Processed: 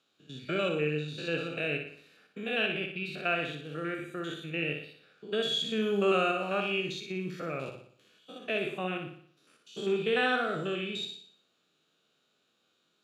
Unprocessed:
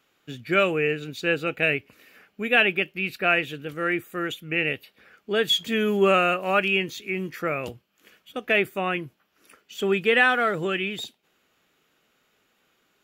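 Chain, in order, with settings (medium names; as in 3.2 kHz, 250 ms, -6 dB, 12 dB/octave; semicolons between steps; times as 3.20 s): spectrogram pixelated in time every 100 ms; cabinet simulation 130–9800 Hz, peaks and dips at 150 Hz +4 dB, 910 Hz -5 dB, 2 kHz -10 dB, 3.9 kHz +9 dB; flutter echo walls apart 10.2 m, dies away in 0.57 s; trim -6 dB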